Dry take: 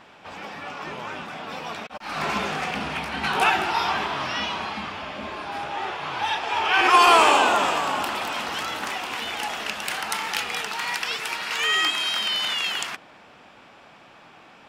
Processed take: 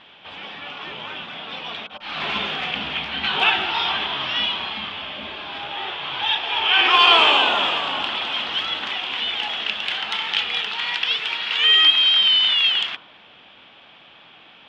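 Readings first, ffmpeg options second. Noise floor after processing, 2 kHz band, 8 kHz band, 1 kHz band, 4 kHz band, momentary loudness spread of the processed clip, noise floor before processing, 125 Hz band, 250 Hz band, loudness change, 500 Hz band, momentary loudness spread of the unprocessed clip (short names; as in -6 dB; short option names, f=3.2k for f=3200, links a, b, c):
-48 dBFS, +2.5 dB, under -10 dB, -2.0 dB, +10.0 dB, 19 LU, -50 dBFS, n/a, -3.5 dB, +5.0 dB, -3.0 dB, 16 LU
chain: -af "lowpass=f=3.3k:t=q:w=5.2,bandreject=f=50.41:t=h:w=4,bandreject=f=100.82:t=h:w=4,bandreject=f=151.23:t=h:w=4,bandreject=f=201.64:t=h:w=4,bandreject=f=252.05:t=h:w=4,bandreject=f=302.46:t=h:w=4,bandreject=f=352.87:t=h:w=4,bandreject=f=403.28:t=h:w=4,bandreject=f=453.69:t=h:w=4,bandreject=f=504.1:t=h:w=4,bandreject=f=554.51:t=h:w=4,bandreject=f=604.92:t=h:w=4,bandreject=f=655.33:t=h:w=4,bandreject=f=705.74:t=h:w=4,bandreject=f=756.15:t=h:w=4,bandreject=f=806.56:t=h:w=4,bandreject=f=856.97:t=h:w=4,bandreject=f=907.38:t=h:w=4,bandreject=f=957.79:t=h:w=4,bandreject=f=1.0082k:t=h:w=4,bandreject=f=1.05861k:t=h:w=4,bandreject=f=1.10902k:t=h:w=4,bandreject=f=1.15943k:t=h:w=4,bandreject=f=1.20984k:t=h:w=4,bandreject=f=1.26025k:t=h:w=4,bandreject=f=1.31066k:t=h:w=4,bandreject=f=1.36107k:t=h:w=4,bandreject=f=1.41148k:t=h:w=4,bandreject=f=1.46189k:t=h:w=4,bandreject=f=1.5123k:t=h:w=4,volume=-2.5dB"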